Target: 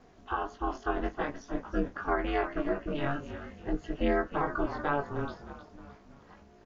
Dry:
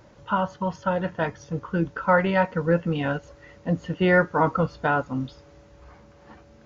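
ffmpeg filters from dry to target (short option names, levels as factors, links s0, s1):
-filter_complex "[0:a]asplit=2[s0][s1];[s1]asplit=4[s2][s3][s4][s5];[s2]adelay=309,afreqshift=-49,volume=0.251[s6];[s3]adelay=618,afreqshift=-98,volume=0.108[s7];[s4]adelay=927,afreqshift=-147,volume=0.0462[s8];[s5]adelay=1236,afreqshift=-196,volume=0.02[s9];[s6][s7][s8][s9]amix=inputs=4:normalize=0[s10];[s0][s10]amix=inputs=2:normalize=0,alimiter=limit=0.188:level=0:latency=1:release=175,flanger=delay=16.5:depth=5.2:speed=0.48,aeval=exprs='val(0)*sin(2*PI*140*n/s)':c=same"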